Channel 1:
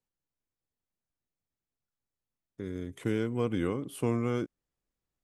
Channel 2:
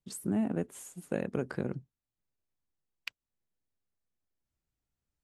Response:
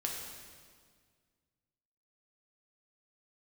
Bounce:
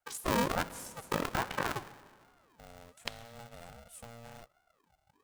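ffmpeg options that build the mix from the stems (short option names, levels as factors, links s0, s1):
-filter_complex "[0:a]equalizer=f=8100:t=o:w=1.1:g=14.5,acompressor=threshold=0.0316:ratio=5,volume=0.168[s0];[1:a]asubboost=boost=7.5:cutoff=89,aeval=exprs='val(0)*sin(2*PI*730*n/s+730*0.5/1.3*sin(2*PI*1.3*n/s))':c=same,volume=1.26,asplit=2[s1][s2];[s2]volume=0.266[s3];[2:a]atrim=start_sample=2205[s4];[s3][s4]afir=irnorm=-1:irlink=0[s5];[s0][s1][s5]amix=inputs=3:normalize=0,aeval=exprs='val(0)*sgn(sin(2*PI*350*n/s))':c=same"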